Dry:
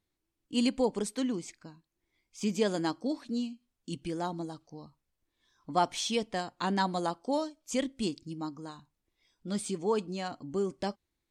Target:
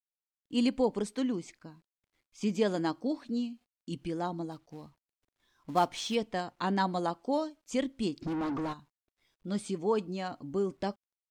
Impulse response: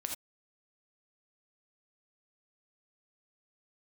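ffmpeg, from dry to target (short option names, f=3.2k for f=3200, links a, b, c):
-filter_complex "[0:a]asettb=1/sr,asplit=3[a][b][c];[a]atrim=end=4.514[d];[b]atrim=start=4.51:end=6.15,asetpts=PTS-STARTPTS,afade=t=in:d=0.004:c=qsin,afade=t=out:st=1.636:d=0.004:c=qsin,acrusher=bits=4:mode=log:mix=0:aa=0.000001[e];[c]atrim=start=6.146[f];[d][e]acrossfade=d=0.004:c1=hsin:c2=qsin[g];[g][f]acrossfade=d=0.004:c1=qsin:c2=hsin,asplit=3[h][i][j];[h]afade=t=out:st=8.21:d=0.02[k];[i]asplit=2[l][m];[m]highpass=f=720:p=1,volume=38dB,asoftclip=type=tanh:threshold=-26dB[n];[l][n]amix=inputs=2:normalize=0,lowpass=f=1.2k:p=1,volume=-6dB,afade=t=in:st=8.21:d=0.02,afade=t=out:st=8.72:d=0.02[o];[j]afade=t=in:st=8.72:d=0.02[p];[k][o][p]amix=inputs=3:normalize=0,acrusher=bits=11:mix=0:aa=0.000001,aemphasis=mode=reproduction:type=cd"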